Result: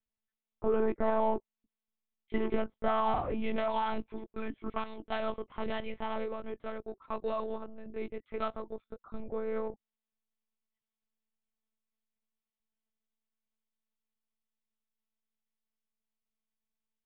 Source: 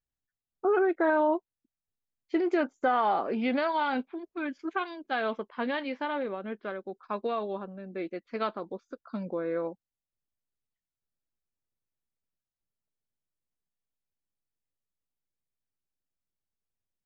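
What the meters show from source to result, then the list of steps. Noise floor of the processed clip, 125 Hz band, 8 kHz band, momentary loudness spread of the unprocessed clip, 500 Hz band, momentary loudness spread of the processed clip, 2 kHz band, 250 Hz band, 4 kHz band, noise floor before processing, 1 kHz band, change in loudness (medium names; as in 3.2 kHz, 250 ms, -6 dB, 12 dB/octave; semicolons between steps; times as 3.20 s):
under -85 dBFS, +1.0 dB, no reading, 13 LU, -3.5 dB, 13 LU, -9.5 dB, -6.0 dB, -4.5 dB, under -85 dBFS, -4.5 dB, -4.5 dB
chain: band-stop 1.6 kHz, Q 5.5; in parallel at -8 dB: saturation -34.5 dBFS, distortion -6 dB; on the sum: monotone LPC vocoder at 8 kHz 220 Hz; trim -4 dB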